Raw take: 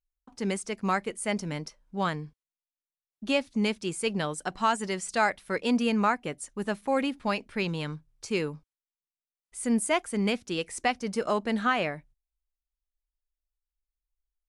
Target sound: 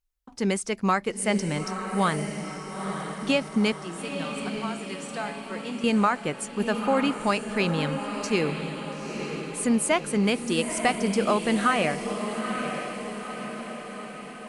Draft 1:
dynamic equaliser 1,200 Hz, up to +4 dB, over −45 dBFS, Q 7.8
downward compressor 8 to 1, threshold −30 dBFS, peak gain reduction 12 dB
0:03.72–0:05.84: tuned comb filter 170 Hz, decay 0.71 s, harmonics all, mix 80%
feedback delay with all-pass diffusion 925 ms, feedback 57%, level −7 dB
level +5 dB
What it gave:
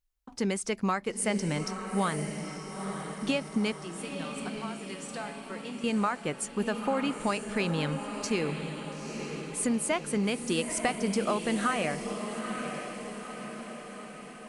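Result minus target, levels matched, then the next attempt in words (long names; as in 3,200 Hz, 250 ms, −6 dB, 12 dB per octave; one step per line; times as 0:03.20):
downward compressor: peak gain reduction +6.5 dB
dynamic equaliser 1,200 Hz, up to +4 dB, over −45 dBFS, Q 7.8
downward compressor 8 to 1, threshold −22.5 dBFS, peak gain reduction 5.5 dB
0:03.72–0:05.84: tuned comb filter 170 Hz, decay 0.71 s, harmonics all, mix 80%
feedback delay with all-pass diffusion 925 ms, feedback 57%, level −7 dB
level +5 dB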